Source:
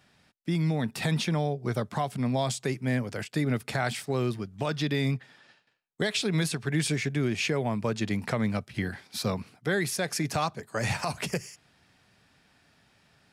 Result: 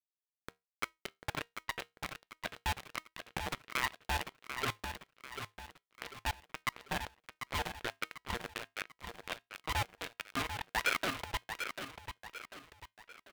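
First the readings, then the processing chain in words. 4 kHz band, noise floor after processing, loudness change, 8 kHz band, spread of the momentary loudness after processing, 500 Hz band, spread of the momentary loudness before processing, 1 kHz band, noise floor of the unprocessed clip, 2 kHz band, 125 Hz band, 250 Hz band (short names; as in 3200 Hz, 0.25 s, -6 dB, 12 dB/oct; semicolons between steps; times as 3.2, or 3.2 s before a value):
-6.0 dB, under -85 dBFS, -10.0 dB, -10.0 dB, 13 LU, -15.5 dB, 5 LU, -4.5 dB, -65 dBFS, -4.5 dB, -18.0 dB, -20.0 dB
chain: harmonic-percussive split harmonic -6 dB; HPF 40 Hz 6 dB/oct; wah 1.4 Hz 380–1900 Hz, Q 8.9; companded quantiser 2-bit; bell 550 Hz -11 dB 2.2 oct; resonator 290 Hz, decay 0.2 s, harmonics all, mix 40%; feedback echo 0.743 s, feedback 41%, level -8 dB; vibrato 1.6 Hz 18 cents; LPF 3200 Hz 24 dB/oct; polarity switched at an audio rate 470 Hz; gain +7.5 dB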